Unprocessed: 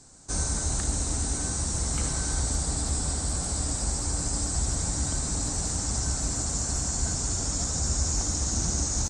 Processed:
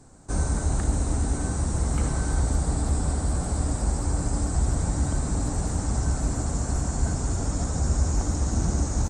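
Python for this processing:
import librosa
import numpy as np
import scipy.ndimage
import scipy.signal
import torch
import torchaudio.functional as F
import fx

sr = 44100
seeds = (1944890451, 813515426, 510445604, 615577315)

y = fx.peak_eq(x, sr, hz=5500.0, db=-15.0, octaves=2.3)
y = F.gain(torch.from_numpy(y), 5.5).numpy()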